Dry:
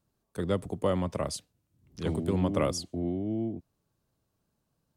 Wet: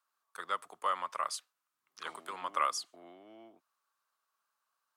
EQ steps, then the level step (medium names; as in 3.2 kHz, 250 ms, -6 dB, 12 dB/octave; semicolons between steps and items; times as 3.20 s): resonant high-pass 1.2 kHz, resonance Q 3.5; -2.5 dB